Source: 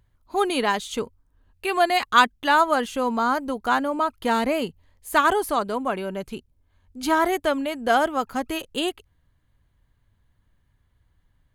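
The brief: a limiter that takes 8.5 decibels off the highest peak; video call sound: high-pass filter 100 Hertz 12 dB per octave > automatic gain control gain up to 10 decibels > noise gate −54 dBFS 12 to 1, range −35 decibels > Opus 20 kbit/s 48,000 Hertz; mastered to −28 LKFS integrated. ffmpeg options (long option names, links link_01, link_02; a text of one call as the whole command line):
ffmpeg -i in.wav -af "alimiter=limit=-12.5dB:level=0:latency=1,highpass=100,dynaudnorm=maxgain=10dB,agate=range=-35dB:threshold=-54dB:ratio=12,volume=-2.5dB" -ar 48000 -c:a libopus -b:a 20k out.opus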